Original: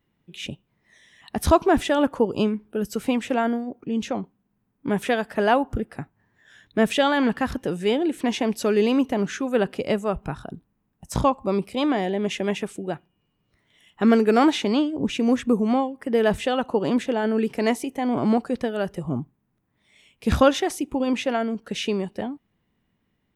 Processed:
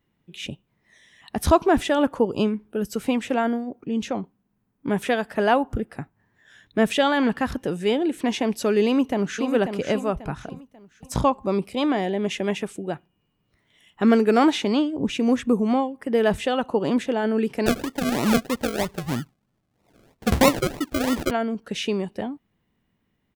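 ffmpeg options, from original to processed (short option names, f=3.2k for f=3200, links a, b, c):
-filter_complex "[0:a]asplit=2[a][b];[b]afade=t=in:st=8.84:d=0.01,afade=t=out:st=9.52:d=0.01,aecho=0:1:540|1080|1620|2160:0.421697|0.147594|0.0516578|0.0180802[c];[a][c]amix=inputs=2:normalize=0,asettb=1/sr,asplit=3[d][e][f];[d]atrim=end=17.664[g];[e]atrim=start=17.66:end=21.31,asetpts=PTS-STARTPTS,afade=t=in:d=0.004:c=qsin,afade=t=out:st=3.646:d=0.004:c=qsin,acrusher=samples=38:mix=1:aa=0.000001:lfo=1:lforange=22.8:lforate=3.1[h];[f]atrim=start=21.306[i];[g][h]acrossfade=d=0.004:c1=hsin:c2=qsin[j];[j][i]acrossfade=d=0.004:c1=qsin:c2=hsin"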